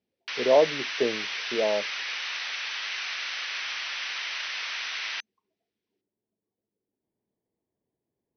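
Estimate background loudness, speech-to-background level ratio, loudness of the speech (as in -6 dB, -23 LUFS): -31.0 LUFS, 5.0 dB, -26.0 LUFS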